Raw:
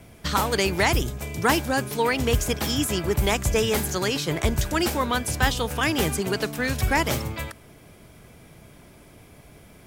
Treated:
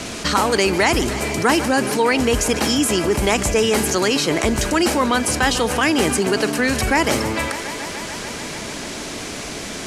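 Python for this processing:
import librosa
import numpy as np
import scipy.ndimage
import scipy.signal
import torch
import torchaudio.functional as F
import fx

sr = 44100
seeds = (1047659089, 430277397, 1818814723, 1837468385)

p1 = scipy.signal.sosfilt(scipy.signal.butter(4, 11000.0, 'lowpass', fs=sr, output='sos'), x)
p2 = fx.low_shelf_res(p1, sr, hz=180.0, db=-7.5, q=1.5)
p3 = fx.notch(p2, sr, hz=3500.0, q=9.9)
p4 = fx.dmg_noise_band(p3, sr, seeds[0], low_hz=890.0, high_hz=7700.0, level_db=-53.0)
p5 = p4 + fx.echo_thinned(p4, sr, ms=146, feedback_pct=83, hz=190.0, wet_db=-20, dry=0)
p6 = fx.env_flatten(p5, sr, amount_pct=50)
y = p6 * 10.0 ** (3.0 / 20.0)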